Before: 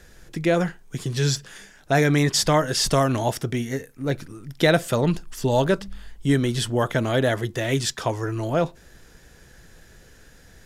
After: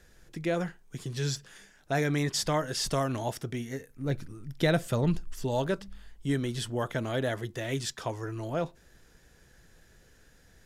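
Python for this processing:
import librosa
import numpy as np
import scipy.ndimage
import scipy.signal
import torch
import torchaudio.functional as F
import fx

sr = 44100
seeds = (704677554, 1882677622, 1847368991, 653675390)

y = fx.low_shelf(x, sr, hz=150.0, db=10.5, at=(3.9, 5.44))
y = y * librosa.db_to_amplitude(-9.0)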